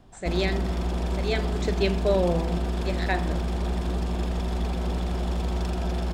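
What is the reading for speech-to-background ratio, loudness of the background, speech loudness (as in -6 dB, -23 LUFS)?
0.0 dB, -29.0 LUFS, -29.0 LUFS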